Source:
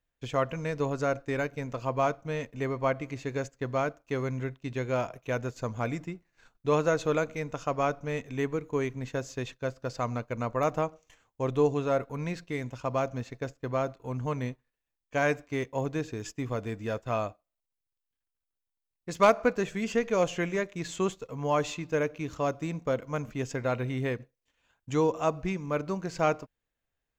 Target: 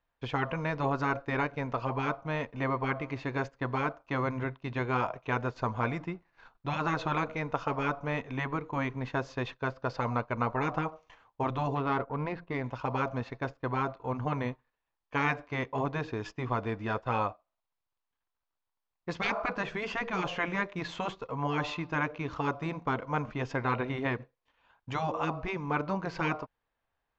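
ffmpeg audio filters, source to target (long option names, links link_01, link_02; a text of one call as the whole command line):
ffmpeg -i in.wav -filter_complex "[0:a]asettb=1/sr,asplit=3[link_01][link_02][link_03];[link_01]atrim=end=11.754[link_04];[link_02]atrim=start=11.75:end=12.64,asetpts=PTS-STARTPTS,afade=type=in:duration=0.004:curve=qsin,afade=type=out:start_time=0.886:duration=0.004:curve=qsin,adynamicsmooth=sensitivity=4:basefreq=1600[link_05];[link_03]atrim=start=12.636[link_06];[link_04][link_05]acrossfade=duration=0.004:curve1=hsin:curve2=qsin[link_07];[link_07][link_06]acrossfade=duration=0.004:curve1=qsin:curve2=hsin,lowpass=frequency=4700:width=0.5412,lowpass=frequency=4700:width=1.3066,equalizer=frequency=970:width_type=o:width=1.2:gain=11.5,afftfilt=real='re*lt(hypot(re,im),0.282)':imag='im*lt(hypot(re,im),0.282)':win_size=1024:overlap=0.75" out.wav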